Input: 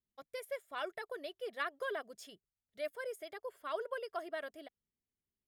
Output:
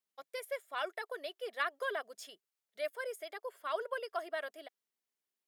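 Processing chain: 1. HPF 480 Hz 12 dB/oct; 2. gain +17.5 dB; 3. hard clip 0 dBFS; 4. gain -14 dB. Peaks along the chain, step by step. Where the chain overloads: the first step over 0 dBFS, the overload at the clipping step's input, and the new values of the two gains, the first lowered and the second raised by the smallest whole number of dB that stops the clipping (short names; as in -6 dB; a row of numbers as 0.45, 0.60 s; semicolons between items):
-23.0, -5.5, -5.5, -19.5 dBFS; no overload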